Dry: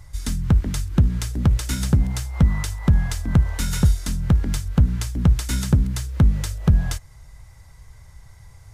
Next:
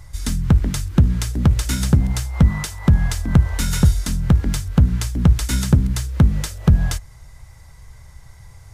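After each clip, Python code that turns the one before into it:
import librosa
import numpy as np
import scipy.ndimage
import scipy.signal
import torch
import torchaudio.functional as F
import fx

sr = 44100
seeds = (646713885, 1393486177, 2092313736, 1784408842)

y = fx.hum_notches(x, sr, base_hz=50, count=2)
y = y * 10.0 ** (3.5 / 20.0)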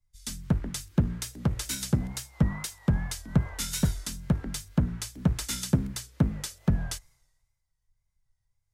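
y = fx.peak_eq(x, sr, hz=67.0, db=-12.5, octaves=1.8)
y = fx.wow_flutter(y, sr, seeds[0], rate_hz=2.1, depth_cents=66.0)
y = fx.band_widen(y, sr, depth_pct=100)
y = y * 10.0 ** (-7.0 / 20.0)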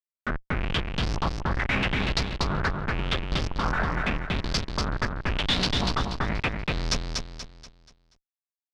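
y = fx.schmitt(x, sr, flips_db=-33.0)
y = fx.filter_lfo_lowpass(y, sr, shape='saw_up', hz=0.86, low_hz=970.0, high_hz=5700.0, q=4.1)
y = fx.echo_feedback(y, sr, ms=240, feedback_pct=38, wet_db=-4.0)
y = y * 10.0 ** (2.5 / 20.0)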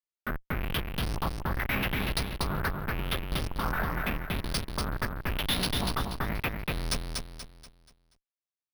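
y = np.repeat(scipy.signal.resample_poly(x, 1, 3), 3)[:len(x)]
y = y * 10.0 ** (-4.0 / 20.0)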